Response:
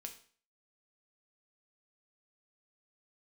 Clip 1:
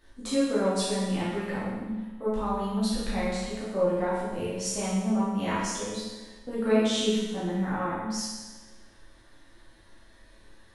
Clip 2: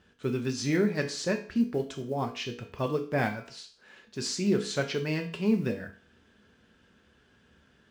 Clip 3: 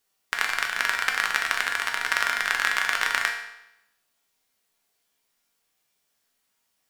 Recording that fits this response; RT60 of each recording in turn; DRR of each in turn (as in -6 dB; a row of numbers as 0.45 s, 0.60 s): 2; 1.2 s, 0.45 s, 0.85 s; -10.5 dB, 3.5 dB, 0.5 dB